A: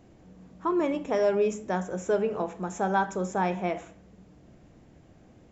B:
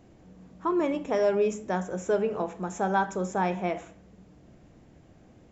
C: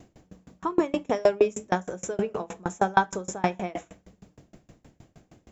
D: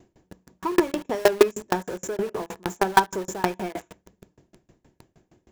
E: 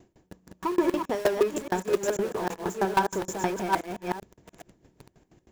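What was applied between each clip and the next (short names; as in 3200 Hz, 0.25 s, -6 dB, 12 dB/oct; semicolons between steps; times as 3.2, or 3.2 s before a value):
nothing audible
high shelf 5500 Hz +9.5 dB; dB-ramp tremolo decaying 6.4 Hz, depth 30 dB; gain +8.5 dB
in parallel at -5 dB: companded quantiser 2-bit; on the sum: small resonant body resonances 370/940/1700 Hz, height 8 dB; gain -6 dB
reverse delay 0.42 s, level -4 dB; soft clip -13 dBFS, distortion -9 dB; gain -1 dB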